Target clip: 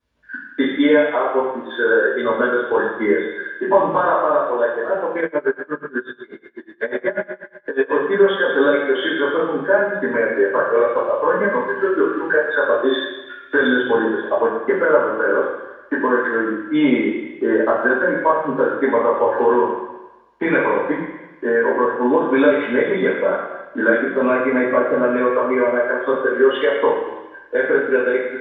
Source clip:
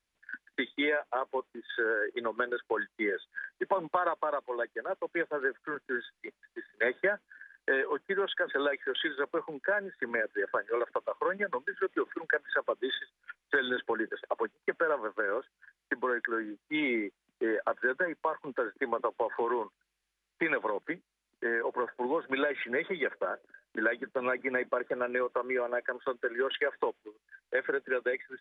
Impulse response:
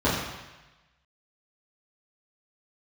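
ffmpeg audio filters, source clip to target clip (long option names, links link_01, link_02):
-filter_complex "[1:a]atrim=start_sample=2205[link_01];[0:a][link_01]afir=irnorm=-1:irlink=0,asplit=3[link_02][link_03][link_04];[link_02]afade=type=out:start_time=5.2:duration=0.02[link_05];[link_03]aeval=exprs='val(0)*pow(10,-23*(0.5-0.5*cos(2*PI*8.2*n/s))/20)':channel_layout=same,afade=type=in:start_time=5.2:duration=0.02,afade=type=out:start_time=7.91:duration=0.02[link_06];[link_04]afade=type=in:start_time=7.91:duration=0.02[link_07];[link_05][link_06][link_07]amix=inputs=3:normalize=0,volume=-4.5dB"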